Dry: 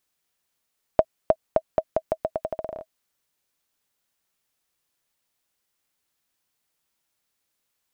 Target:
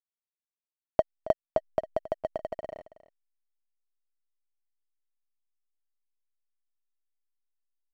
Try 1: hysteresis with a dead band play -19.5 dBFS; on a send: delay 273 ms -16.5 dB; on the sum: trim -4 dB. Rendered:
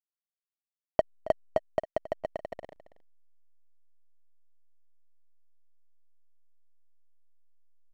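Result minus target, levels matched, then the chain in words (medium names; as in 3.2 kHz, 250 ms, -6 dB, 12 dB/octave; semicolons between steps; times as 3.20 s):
hysteresis with a dead band: distortion +9 dB
hysteresis with a dead band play -31 dBFS; on a send: delay 273 ms -16.5 dB; on the sum: trim -4 dB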